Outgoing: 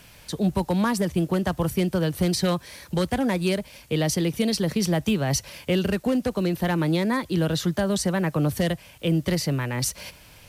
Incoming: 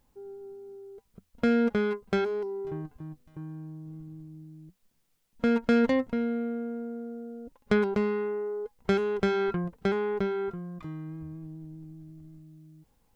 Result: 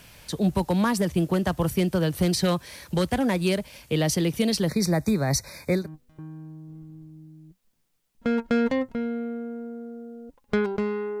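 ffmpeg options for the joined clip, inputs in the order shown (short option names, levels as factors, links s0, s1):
-filter_complex "[0:a]asettb=1/sr,asplit=3[s0][s1][s2];[s0]atrim=end=4.684[s3];[s1]atrim=start=4.68:end=5.89,asetpts=PTS-STARTPTS,afade=t=in:d=0.004:c=qsin,afade=t=out:st=1.206:d=0.004:c=qsin,asuperstop=centerf=3000:order=20:qfactor=2.7[s4];[s2]atrim=start=5.886[s5];[s3][s4]acrossfade=d=0.004:c1=hsin:c2=qsin[s6];[s6][s5]acrossfade=d=0.004:c1=qsin:c2=hsin,apad=whole_dur=11.2,atrim=end=11.2,atrim=end=5.89,asetpts=PTS-STARTPTS[s7];[1:a]atrim=start=2.91:end=8.38,asetpts=PTS-STARTPTS[s8];[s7][s8]acrossfade=d=0.16:c1=tri:c2=tri"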